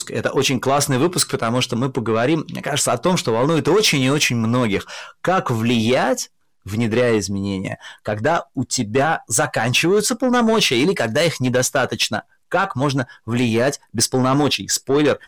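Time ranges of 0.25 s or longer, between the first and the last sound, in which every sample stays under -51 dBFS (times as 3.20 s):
6.28–6.65 s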